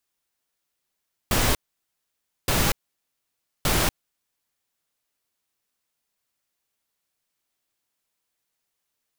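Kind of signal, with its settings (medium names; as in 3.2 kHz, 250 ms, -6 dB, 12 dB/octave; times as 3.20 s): noise bursts pink, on 0.24 s, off 0.93 s, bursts 3, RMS -21 dBFS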